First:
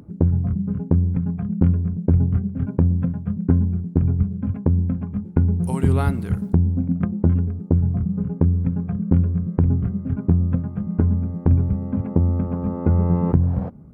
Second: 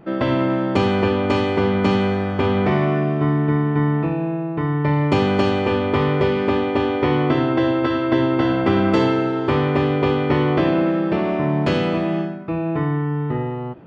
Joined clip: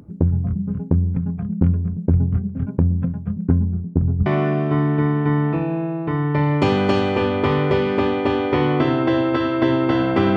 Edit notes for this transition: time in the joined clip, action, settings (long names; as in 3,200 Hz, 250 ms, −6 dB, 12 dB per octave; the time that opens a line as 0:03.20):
first
0:03.58–0:04.26: low-pass filter 1,700 Hz → 1,000 Hz
0:04.26: continue with second from 0:02.76